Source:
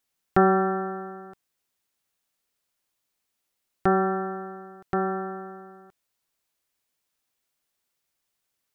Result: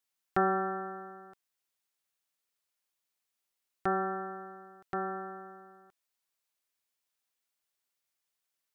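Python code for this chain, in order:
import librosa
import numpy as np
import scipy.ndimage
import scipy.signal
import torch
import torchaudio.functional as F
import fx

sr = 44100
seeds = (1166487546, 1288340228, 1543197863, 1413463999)

y = fx.low_shelf(x, sr, hz=440.0, db=-8.0)
y = y * 10.0 ** (-5.5 / 20.0)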